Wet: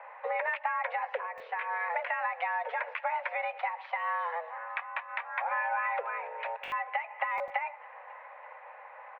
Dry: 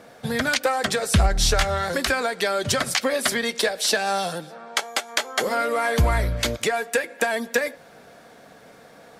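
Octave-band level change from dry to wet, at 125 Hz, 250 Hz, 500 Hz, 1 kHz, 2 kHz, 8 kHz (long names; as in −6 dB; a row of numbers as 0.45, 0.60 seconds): below −40 dB, below −40 dB, −14.5 dB, −4.0 dB, −8.0 dB, below −40 dB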